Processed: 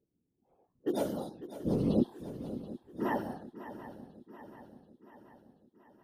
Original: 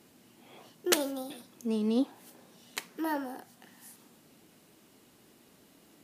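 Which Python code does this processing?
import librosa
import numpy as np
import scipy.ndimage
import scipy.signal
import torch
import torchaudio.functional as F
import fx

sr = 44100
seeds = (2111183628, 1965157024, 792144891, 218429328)

y = fx.hpss_only(x, sr, part='harmonic')
y = fx.noise_reduce_blind(y, sr, reduce_db=18)
y = fx.env_lowpass(y, sr, base_hz=340.0, full_db=-32.5)
y = fx.whisperise(y, sr, seeds[0])
y = fx.echo_swing(y, sr, ms=732, ratio=3, feedback_pct=53, wet_db=-13.5)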